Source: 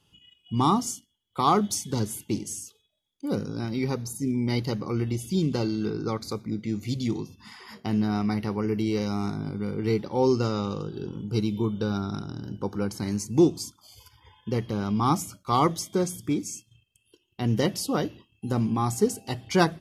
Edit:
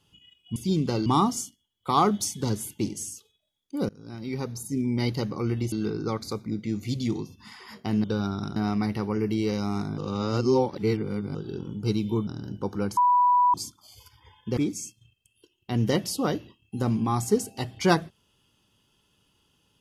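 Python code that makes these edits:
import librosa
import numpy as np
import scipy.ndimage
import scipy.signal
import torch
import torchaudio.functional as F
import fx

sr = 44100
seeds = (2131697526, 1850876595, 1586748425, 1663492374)

y = fx.edit(x, sr, fx.fade_in_from(start_s=3.39, length_s=1.13, curve='qsin', floor_db=-23.0),
    fx.move(start_s=5.22, length_s=0.5, to_s=0.56),
    fx.reverse_span(start_s=9.46, length_s=1.37),
    fx.move(start_s=11.75, length_s=0.52, to_s=8.04),
    fx.bleep(start_s=12.97, length_s=0.57, hz=984.0, db=-16.5),
    fx.cut(start_s=14.57, length_s=1.7), tone=tone)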